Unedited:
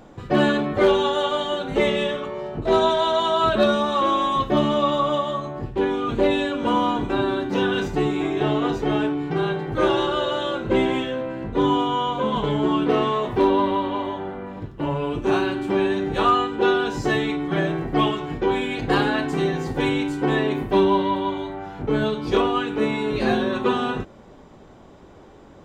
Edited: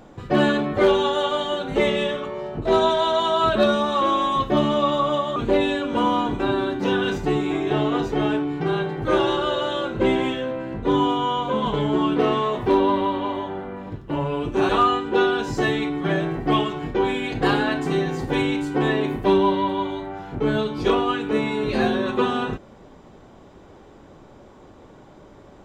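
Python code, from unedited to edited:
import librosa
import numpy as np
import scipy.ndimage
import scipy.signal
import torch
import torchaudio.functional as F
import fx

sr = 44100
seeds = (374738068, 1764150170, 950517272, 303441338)

y = fx.edit(x, sr, fx.cut(start_s=5.36, length_s=0.7),
    fx.cut(start_s=15.39, length_s=0.77), tone=tone)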